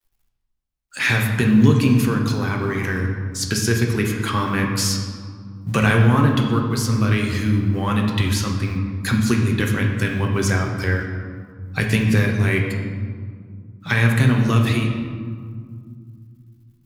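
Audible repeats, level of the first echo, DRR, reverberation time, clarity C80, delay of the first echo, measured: no echo audible, no echo audible, 1.0 dB, 2.1 s, 6.0 dB, no echo audible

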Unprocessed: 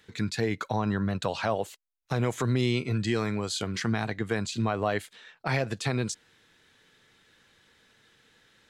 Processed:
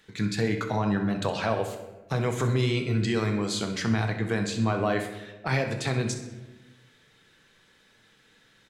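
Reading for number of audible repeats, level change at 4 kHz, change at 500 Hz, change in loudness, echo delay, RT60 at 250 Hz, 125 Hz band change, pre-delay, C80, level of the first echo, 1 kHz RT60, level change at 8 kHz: 1, +1.0 dB, +2.0 dB, +2.0 dB, 64 ms, 1.5 s, +2.5 dB, 4 ms, 9.5 dB, −12.5 dB, 1.0 s, +1.0 dB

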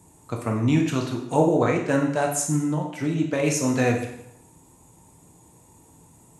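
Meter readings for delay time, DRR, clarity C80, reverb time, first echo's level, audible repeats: no echo audible, 1.0 dB, 9.0 dB, 0.75 s, no echo audible, no echo audible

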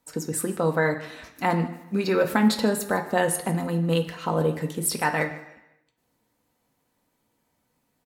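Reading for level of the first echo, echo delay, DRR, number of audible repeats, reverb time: −18.0 dB, 153 ms, 3.0 dB, 1, 0.95 s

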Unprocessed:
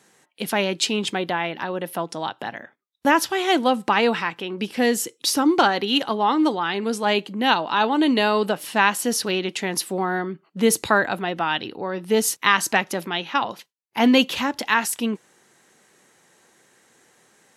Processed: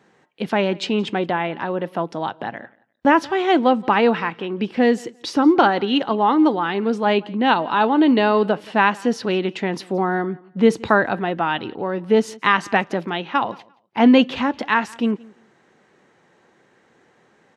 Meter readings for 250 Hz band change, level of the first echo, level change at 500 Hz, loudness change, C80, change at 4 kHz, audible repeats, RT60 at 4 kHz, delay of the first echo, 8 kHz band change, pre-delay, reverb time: +4.5 dB, −24.0 dB, +3.5 dB, +2.0 dB, no reverb audible, −4.0 dB, 1, no reverb audible, 173 ms, below −10 dB, no reverb audible, no reverb audible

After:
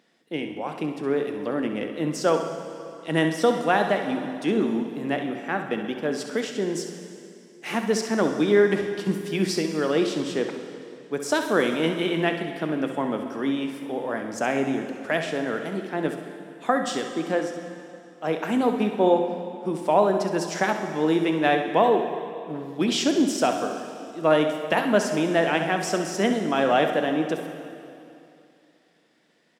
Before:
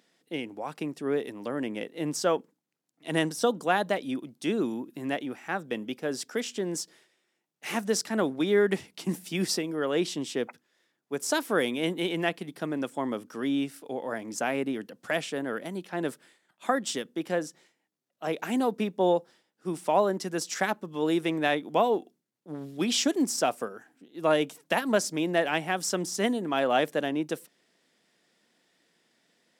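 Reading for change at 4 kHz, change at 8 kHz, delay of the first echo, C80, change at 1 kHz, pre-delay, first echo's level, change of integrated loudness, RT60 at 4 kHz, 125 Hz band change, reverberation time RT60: +2.0 dB, −1.0 dB, 66 ms, 8.0 dB, +5.0 dB, 4 ms, −10.5 dB, +4.5 dB, 2.5 s, +5.5 dB, 2.7 s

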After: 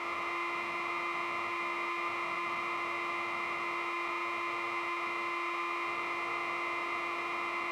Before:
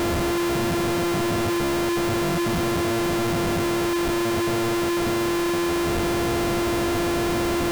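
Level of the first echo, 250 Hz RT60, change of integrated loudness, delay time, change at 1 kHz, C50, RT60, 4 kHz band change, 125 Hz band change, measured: no echo audible, 1.2 s, −11.5 dB, no echo audible, −6.0 dB, 7.5 dB, 1.2 s, −14.5 dB, −32.0 dB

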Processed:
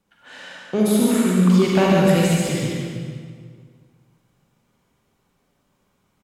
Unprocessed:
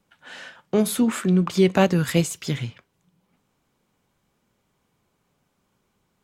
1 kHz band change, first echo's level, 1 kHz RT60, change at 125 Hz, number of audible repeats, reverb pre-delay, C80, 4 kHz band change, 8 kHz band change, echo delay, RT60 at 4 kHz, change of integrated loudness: +4.0 dB, −3.5 dB, 1.8 s, +4.0 dB, 1, 39 ms, −1.5 dB, +3.0 dB, +2.5 dB, 143 ms, 1.5 s, +3.5 dB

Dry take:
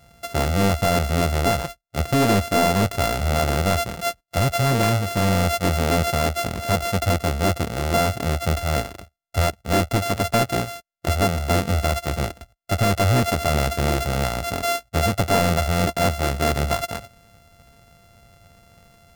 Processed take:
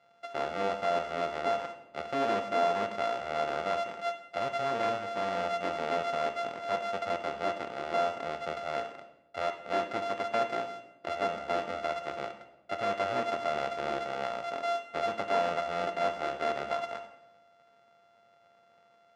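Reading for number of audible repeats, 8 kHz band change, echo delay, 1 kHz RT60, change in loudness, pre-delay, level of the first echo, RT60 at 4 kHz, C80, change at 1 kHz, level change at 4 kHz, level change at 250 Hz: no echo audible, −24.0 dB, no echo audible, 0.85 s, −11.0 dB, 24 ms, no echo audible, 0.70 s, 12.5 dB, −7.0 dB, −14.0 dB, −17.5 dB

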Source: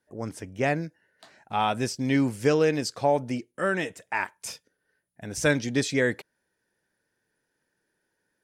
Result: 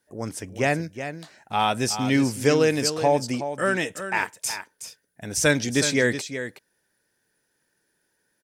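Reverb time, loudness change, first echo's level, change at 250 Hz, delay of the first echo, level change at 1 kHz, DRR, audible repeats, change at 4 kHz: no reverb audible, +3.0 dB, −10.0 dB, +2.5 dB, 371 ms, +3.0 dB, no reverb audible, 1, +7.0 dB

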